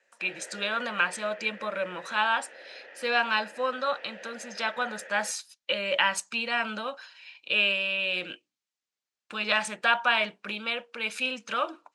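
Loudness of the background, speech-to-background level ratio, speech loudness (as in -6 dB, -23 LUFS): -45.5 LUFS, 17.5 dB, -28.0 LUFS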